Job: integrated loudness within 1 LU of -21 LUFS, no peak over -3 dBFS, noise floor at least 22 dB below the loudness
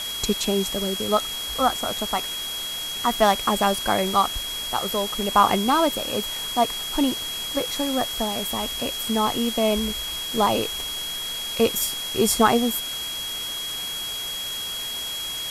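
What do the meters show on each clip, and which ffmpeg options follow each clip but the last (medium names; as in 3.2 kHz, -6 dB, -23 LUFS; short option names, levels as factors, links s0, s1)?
steady tone 3.3 kHz; tone level -29 dBFS; noise floor -31 dBFS; noise floor target -46 dBFS; loudness -23.5 LUFS; peak level -4.0 dBFS; loudness target -21.0 LUFS
-> -af "bandreject=f=3300:w=30"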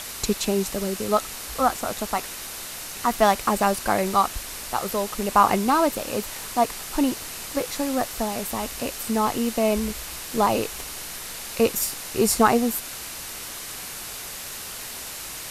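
steady tone not found; noise floor -36 dBFS; noise floor target -47 dBFS
-> -af "afftdn=nr=11:nf=-36"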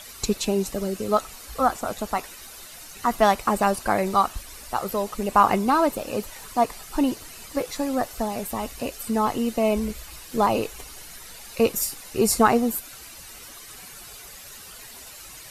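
noise floor -43 dBFS; noise floor target -47 dBFS
-> -af "afftdn=nr=6:nf=-43"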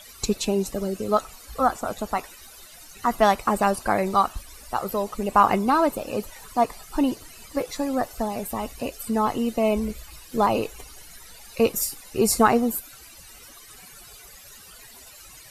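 noise floor -47 dBFS; loudness -24.5 LUFS; peak level -4.5 dBFS; loudness target -21.0 LUFS
-> -af "volume=1.5,alimiter=limit=0.708:level=0:latency=1"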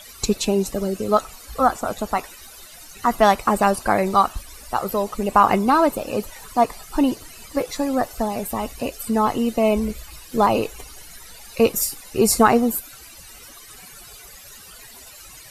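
loudness -21.0 LUFS; peak level -3.0 dBFS; noise floor -43 dBFS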